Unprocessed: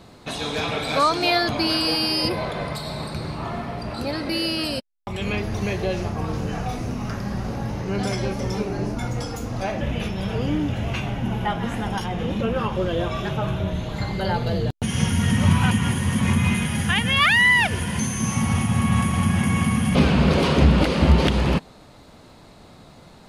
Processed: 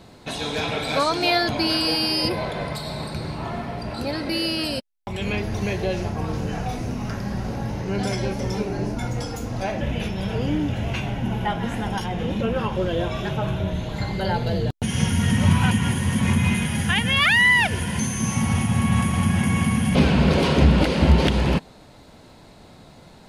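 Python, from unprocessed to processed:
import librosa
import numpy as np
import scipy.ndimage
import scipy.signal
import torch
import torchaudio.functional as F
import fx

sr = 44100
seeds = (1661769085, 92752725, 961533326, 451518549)

y = fx.notch(x, sr, hz=1200.0, q=10.0)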